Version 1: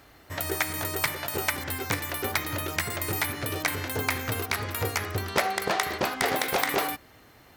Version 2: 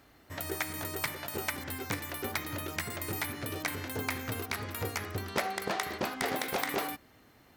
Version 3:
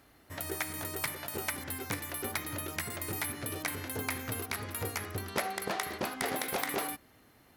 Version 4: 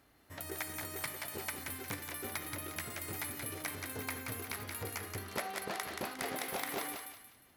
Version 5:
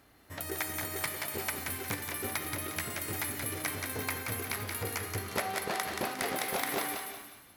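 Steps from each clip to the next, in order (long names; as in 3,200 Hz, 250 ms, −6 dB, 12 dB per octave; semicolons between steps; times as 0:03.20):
parametric band 230 Hz +5 dB 0.97 octaves; level −7 dB
parametric band 11,000 Hz +9.5 dB 0.26 octaves; level −1.5 dB
feedback echo with a high-pass in the loop 178 ms, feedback 38%, high-pass 900 Hz, level −4 dB; level −5.5 dB
reverb whose tail is shaped and stops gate 440 ms flat, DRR 10 dB; level +5 dB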